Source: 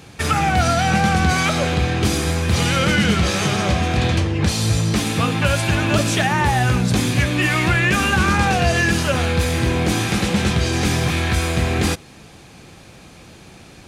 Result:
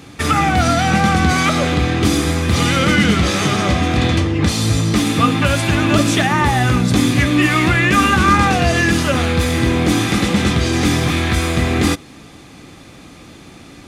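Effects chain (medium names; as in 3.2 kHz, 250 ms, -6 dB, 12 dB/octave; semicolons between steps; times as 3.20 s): small resonant body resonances 280/1200/2000/3500 Hz, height 9 dB, ringing for 45 ms; trim +1.5 dB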